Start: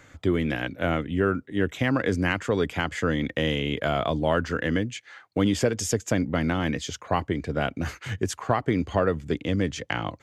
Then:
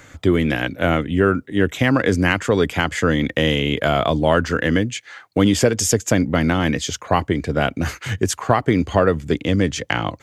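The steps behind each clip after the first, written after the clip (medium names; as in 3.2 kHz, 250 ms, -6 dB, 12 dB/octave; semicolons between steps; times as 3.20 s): treble shelf 6.6 kHz +5.5 dB; trim +7 dB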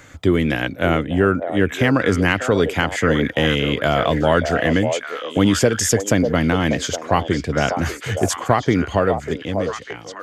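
fade out at the end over 1.52 s; repeats whose band climbs or falls 595 ms, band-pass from 600 Hz, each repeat 1.4 oct, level -4 dB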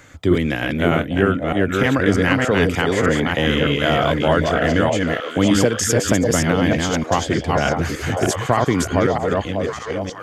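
chunks repeated in reverse 306 ms, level -2 dB; trim -1.5 dB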